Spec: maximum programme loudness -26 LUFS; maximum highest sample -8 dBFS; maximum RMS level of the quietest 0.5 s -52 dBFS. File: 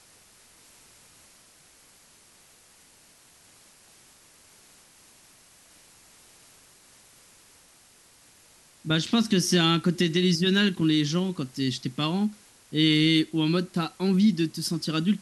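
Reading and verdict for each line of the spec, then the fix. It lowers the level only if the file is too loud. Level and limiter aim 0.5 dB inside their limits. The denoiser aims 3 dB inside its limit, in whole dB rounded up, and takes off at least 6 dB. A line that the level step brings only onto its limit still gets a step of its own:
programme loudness -24.5 LUFS: fail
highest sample -10.0 dBFS: pass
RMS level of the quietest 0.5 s -57 dBFS: pass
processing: trim -2 dB

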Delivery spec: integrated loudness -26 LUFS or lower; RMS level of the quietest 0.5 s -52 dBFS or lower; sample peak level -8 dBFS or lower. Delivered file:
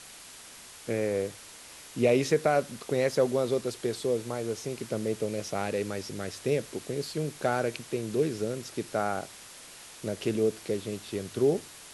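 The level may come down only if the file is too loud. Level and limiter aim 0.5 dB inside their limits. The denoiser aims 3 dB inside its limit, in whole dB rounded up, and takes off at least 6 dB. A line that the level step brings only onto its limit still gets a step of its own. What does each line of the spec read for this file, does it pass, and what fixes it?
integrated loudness -30.0 LUFS: pass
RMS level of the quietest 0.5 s -48 dBFS: fail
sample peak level -11.5 dBFS: pass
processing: noise reduction 7 dB, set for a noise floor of -48 dBFS

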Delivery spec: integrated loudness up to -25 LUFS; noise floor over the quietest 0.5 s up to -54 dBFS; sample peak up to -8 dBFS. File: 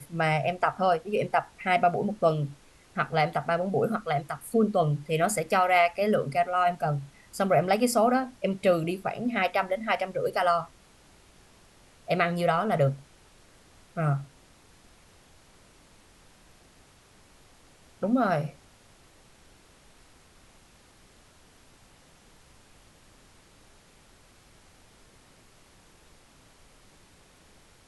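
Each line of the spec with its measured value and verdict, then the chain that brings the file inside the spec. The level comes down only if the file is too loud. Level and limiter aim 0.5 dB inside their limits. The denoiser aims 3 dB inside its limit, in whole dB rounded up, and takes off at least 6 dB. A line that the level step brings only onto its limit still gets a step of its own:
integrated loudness -26.5 LUFS: pass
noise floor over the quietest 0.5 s -57 dBFS: pass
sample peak -10.5 dBFS: pass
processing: none needed

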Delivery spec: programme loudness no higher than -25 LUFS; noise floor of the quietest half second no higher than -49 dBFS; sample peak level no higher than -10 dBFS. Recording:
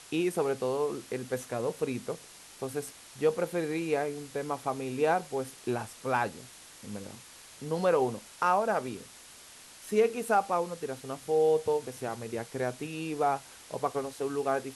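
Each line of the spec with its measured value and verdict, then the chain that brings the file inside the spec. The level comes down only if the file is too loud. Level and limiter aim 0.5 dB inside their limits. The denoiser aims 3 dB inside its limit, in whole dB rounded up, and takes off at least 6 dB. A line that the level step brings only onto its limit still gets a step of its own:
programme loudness -31.0 LUFS: pass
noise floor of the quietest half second -51 dBFS: pass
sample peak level -14.0 dBFS: pass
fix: none needed

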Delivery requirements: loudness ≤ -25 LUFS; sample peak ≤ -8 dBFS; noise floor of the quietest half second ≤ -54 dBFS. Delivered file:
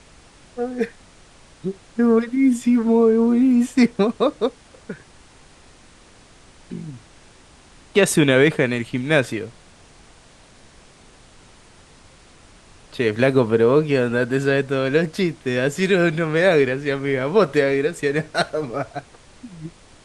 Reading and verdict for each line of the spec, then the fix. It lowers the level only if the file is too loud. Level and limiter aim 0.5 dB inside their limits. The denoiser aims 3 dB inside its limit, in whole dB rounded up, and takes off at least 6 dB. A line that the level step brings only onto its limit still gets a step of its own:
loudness -19.0 LUFS: fail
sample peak -3.0 dBFS: fail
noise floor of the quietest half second -49 dBFS: fail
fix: trim -6.5 dB

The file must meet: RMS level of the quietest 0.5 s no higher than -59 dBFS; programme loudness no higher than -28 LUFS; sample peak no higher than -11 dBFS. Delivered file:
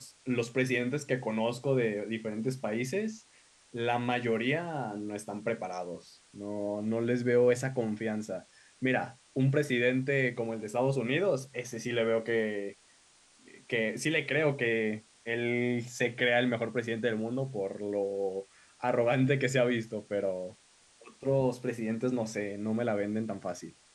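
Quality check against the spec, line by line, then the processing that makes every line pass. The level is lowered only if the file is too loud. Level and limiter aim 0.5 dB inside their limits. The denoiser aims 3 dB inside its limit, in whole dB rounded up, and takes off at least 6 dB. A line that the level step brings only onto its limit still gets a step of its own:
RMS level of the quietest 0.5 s -62 dBFS: pass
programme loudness -31.5 LUFS: pass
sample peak -13.5 dBFS: pass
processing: none needed

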